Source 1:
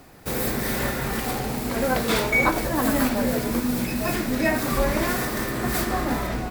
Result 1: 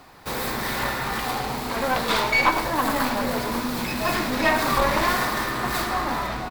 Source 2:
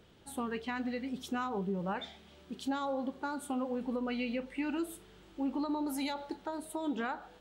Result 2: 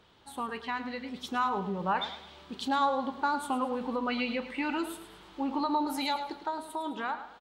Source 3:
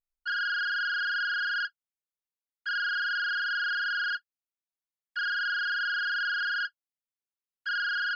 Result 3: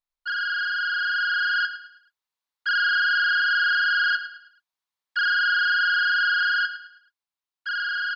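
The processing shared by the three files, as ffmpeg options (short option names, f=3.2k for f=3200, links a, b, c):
-af "aeval=exprs='clip(val(0),-1,0.0668)':c=same,equalizer=f=1k:t=o:w=1:g=11,equalizer=f=2k:t=o:w=1:g=3,equalizer=f=4k:t=o:w=1:g=8,dynaudnorm=f=160:g=17:m=5dB,aecho=1:1:107|214|321|428:0.251|0.0929|0.0344|0.0127,volume=-4.5dB"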